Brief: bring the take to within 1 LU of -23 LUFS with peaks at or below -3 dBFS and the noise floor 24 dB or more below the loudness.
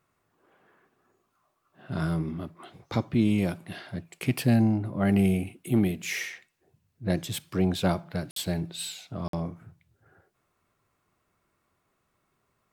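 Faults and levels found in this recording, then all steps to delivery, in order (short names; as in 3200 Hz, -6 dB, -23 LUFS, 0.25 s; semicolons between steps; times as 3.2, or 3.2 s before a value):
dropouts 2; longest dropout 53 ms; loudness -28.5 LUFS; peak -11.5 dBFS; loudness target -23.0 LUFS
-> interpolate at 8.31/9.28, 53 ms; gain +5.5 dB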